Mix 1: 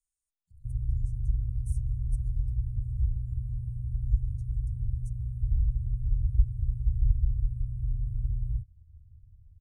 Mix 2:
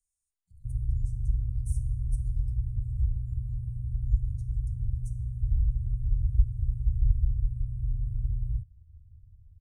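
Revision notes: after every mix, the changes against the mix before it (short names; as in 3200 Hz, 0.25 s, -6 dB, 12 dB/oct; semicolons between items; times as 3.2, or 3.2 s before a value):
reverb: on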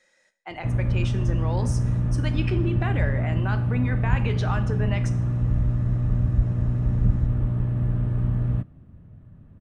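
master: remove inverse Chebyshev band-stop 340–2800 Hz, stop band 70 dB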